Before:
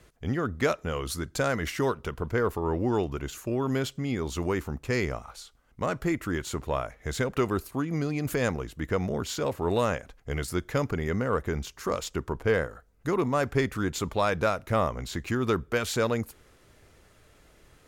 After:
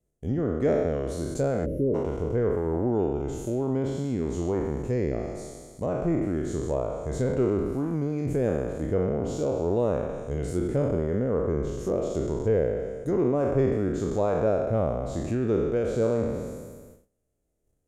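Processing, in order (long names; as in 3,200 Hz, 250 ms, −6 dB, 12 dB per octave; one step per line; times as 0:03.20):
peak hold with a decay on every bin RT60 1.70 s
noise gate −48 dBFS, range −22 dB
gain on a spectral selection 0:01.66–0:01.95, 630–9,800 Hz −27 dB
treble cut that deepens with the level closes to 3,000 Hz, closed at −21 dBFS
flat-topped bell 2,200 Hz −16 dB 2.7 octaves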